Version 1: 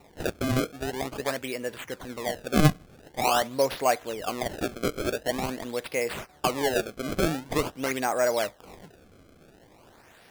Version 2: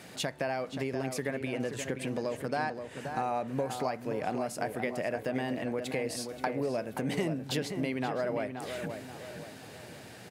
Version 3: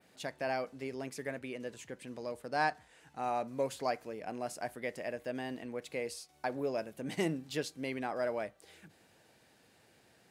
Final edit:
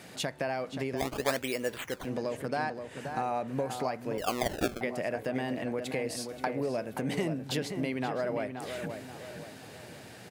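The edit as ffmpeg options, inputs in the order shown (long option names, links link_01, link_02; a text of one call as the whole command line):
ffmpeg -i take0.wav -i take1.wav -filter_complex "[0:a]asplit=2[link_01][link_02];[1:a]asplit=3[link_03][link_04][link_05];[link_03]atrim=end=1.02[link_06];[link_01]atrim=start=0.96:end=2.09[link_07];[link_04]atrim=start=2.03:end=4.182[link_08];[link_02]atrim=start=4.178:end=4.812[link_09];[link_05]atrim=start=4.808[link_10];[link_06][link_07]acrossfade=duration=0.06:curve1=tri:curve2=tri[link_11];[link_11][link_08]acrossfade=duration=0.06:curve1=tri:curve2=tri[link_12];[link_12][link_09]acrossfade=duration=0.004:curve1=hsin:curve2=hsin[link_13];[link_13][link_10]acrossfade=duration=0.004:curve1=hsin:curve2=hsin" out.wav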